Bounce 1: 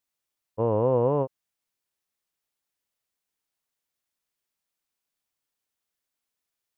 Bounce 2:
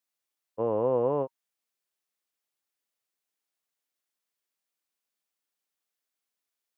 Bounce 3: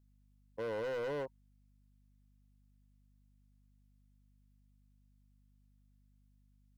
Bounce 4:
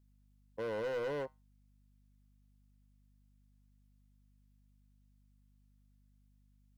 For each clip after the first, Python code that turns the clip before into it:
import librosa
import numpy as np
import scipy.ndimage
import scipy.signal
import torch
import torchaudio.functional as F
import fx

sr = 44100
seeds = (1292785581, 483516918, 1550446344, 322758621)

y1 = scipy.signal.sosfilt(scipy.signal.bessel(2, 230.0, 'highpass', norm='mag', fs=sr, output='sos'), x)
y1 = fx.notch(y1, sr, hz=940.0, q=23.0)
y1 = y1 * librosa.db_to_amplitude(-2.0)
y2 = fx.add_hum(y1, sr, base_hz=50, snr_db=27)
y2 = np.clip(y2, -10.0 ** (-30.5 / 20.0), 10.0 ** (-30.5 / 20.0))
y2 = y2 * librosa.db_to_amplitude(-5.0)
y3 = fx.comb_fb(y2, sr, f0_hz=71.0, decay_s=0.24, harmonics='odd', damping=0.0, mix_pct=40)
y3 = y3 * librosa.db_to_amplitude(4.0)